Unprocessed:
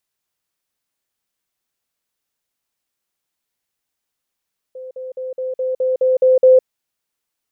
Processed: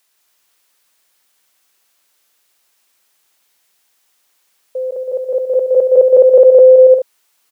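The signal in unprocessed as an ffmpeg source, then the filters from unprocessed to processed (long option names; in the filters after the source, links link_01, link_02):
-f lavfi -i "aevalsrc='pow(10,(-29.5+3*floor(t/0.21))/20)*sin(2*PI*515*t)*clip(min(mod(t,0.21),0.16-mod(t,0.21))/0.005,0,1)':duration=1.89:sample_rate=44100"
-filter_complex "[0:a]highpass=frequency=620:poles=1,asplit=2[link_01][link_02];[link_02]aecho=0:1:170|280.5|352.3|399|429.4:0.631|0.398|0.251|0.158|0.1[link_03];[link_01][link_03]amix=inputs=2:normalize=0,alimiter=level_in=16.5dB:limit=-1dB:release=50:level=0:latency=1"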